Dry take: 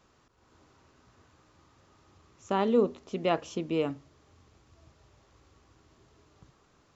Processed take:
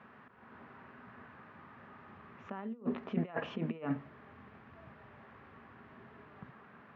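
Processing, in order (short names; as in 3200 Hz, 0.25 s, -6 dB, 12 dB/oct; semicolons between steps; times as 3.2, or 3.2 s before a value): negative-ratio compressor -35 dBFS, ratio -0.5; speaker cabinet 160–2400 Hz, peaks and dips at 220 Hz +8 dB, 320 Hz -10 dB, 520 Hz -4 dB, 1700 Hz +6 dB; gain +1.5 dB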